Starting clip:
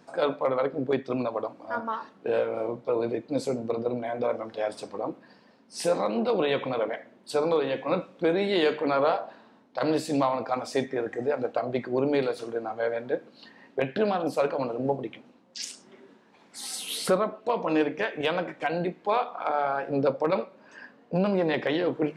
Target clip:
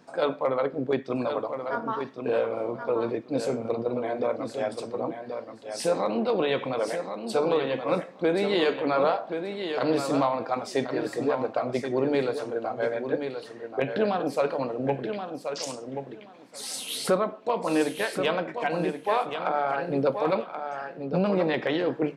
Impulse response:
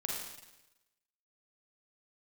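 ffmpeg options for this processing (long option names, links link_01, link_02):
-af "aecho=1:1:1079|2158|3237:0.422|0.0675|0.0108"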